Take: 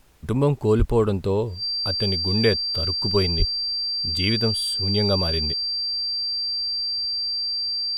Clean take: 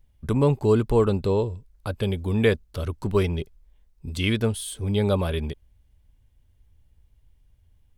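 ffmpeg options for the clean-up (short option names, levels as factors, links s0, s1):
-filter_complex "[0:a]bandreject=f=4700:w=30,asplit=3[s0][s1][s2];[s0]afade=t=out:st=0.78:d=0.02[s3];[s1]highpass=f=140:w=0.5412,highpass=f=140:w=1.3066,afade=t=in:st=0.78:d=0.02,afade=t=out:st=0.9:d=0.02[s4];[s2]afade=t=in:st=0.9:d=0.02[s5];[s3][s4][s5]amix=inputs=3:normalize=0,asplit=3[s6][s7][s8];[s6]afade=t=out:st=3.38:d=0.02[s9];[s7]highpass=f=140:w=0.5412,highpass=f=140:w=1.3066,afade=t=in:st=3.38:d=0.02,afade=t=out:st=3.5:d=0.02[s10];[s8]afade=t=in:st=3.5:d=0.02[s11];[s9][s10][s11]amix=inputs=3:normalize=0,agate=range=0.0891:threshold=0.126"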